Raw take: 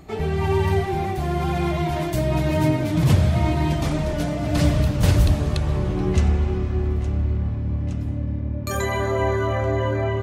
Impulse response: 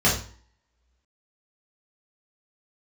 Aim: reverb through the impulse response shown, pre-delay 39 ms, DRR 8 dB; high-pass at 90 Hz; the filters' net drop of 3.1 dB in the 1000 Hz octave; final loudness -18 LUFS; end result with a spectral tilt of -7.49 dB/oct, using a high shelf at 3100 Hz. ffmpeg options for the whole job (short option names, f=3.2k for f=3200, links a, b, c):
-filter_complex "[0:a]highpass=90,equalizer=f=1k:t=o:g=-3.5,highshelf=f=3.1k:g=-6.5,asplit=2[a][b];[1:a]atrim=start_sample=2205,adelay=39[c];[b][c]afir=irnorm=-1:irlink=0,volume=-25dB[d];[a][d]amix=inputs=2:normalize=0,volume=4dB"